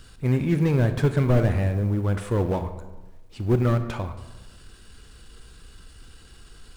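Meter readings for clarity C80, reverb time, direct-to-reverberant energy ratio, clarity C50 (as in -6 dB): 12.0 dB, 1.2 s, 9.0 dB, 10.5 dB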